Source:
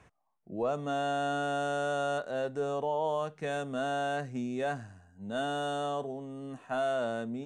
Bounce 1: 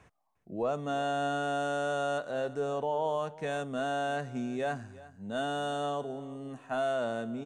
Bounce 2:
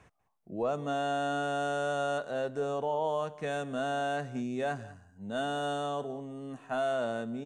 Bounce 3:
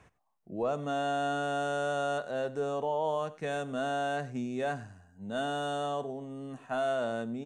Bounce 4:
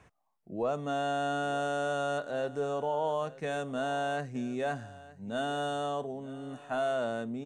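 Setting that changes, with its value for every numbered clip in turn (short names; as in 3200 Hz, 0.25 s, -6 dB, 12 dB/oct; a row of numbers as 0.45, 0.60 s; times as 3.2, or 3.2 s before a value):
echo, time: 354, 194, 96, 918 ms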